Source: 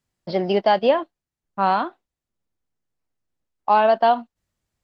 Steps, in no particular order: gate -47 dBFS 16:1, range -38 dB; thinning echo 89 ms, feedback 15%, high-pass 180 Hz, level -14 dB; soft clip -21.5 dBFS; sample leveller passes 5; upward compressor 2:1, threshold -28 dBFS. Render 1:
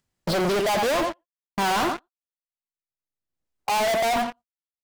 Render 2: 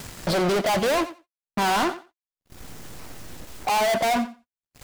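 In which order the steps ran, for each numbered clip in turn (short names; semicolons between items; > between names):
thinning echo > gate > sample leveller > upward compressor > soft clip; soft clip > upward compressor > sample leveller > thinning echo > gate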